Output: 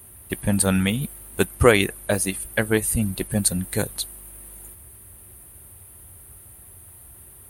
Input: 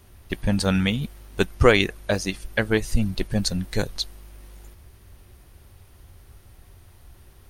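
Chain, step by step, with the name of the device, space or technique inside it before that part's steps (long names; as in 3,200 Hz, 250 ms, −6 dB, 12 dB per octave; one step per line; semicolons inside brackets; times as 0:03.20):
budget condenser microphone (high-pass filter 64 Hz; high shelf with overshoot 7,600 Hz +11.5 dB, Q 3)
level +1 dB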